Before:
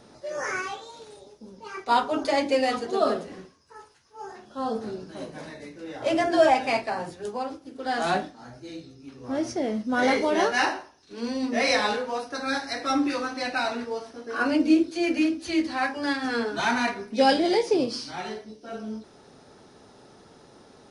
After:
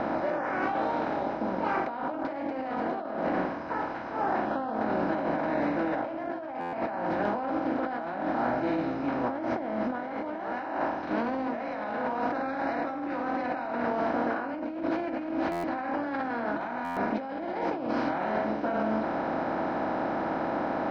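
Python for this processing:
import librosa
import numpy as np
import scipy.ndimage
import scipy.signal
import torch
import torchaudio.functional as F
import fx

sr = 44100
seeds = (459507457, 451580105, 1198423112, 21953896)

y = fx.bin_compress(x, sr, power=0.4)
y = scipy.signal.sosfilt(scipy.signal.butter(2, 1300.0, 'lowpass', fs=sr, output='sos'), y)
y = fx.peak_eq(y, sr, hz=420.0, db=-14.0, octaves=0.35)
y = fx.over_compress(y, sr, threshold_db=-26.0, ratio=-1.0)
y = fx.buffer_glitch(y, sr, at_s=(6.6, 15.51, 16.84), block=512, repeats=10)
y = y * 10.0 ** (-4.5 / 20.0)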